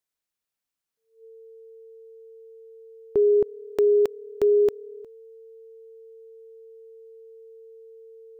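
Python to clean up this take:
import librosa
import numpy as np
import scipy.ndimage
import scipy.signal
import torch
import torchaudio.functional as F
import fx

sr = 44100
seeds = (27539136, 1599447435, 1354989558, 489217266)

y = fx.notch(x, sr, hz=450.0, q=30.0)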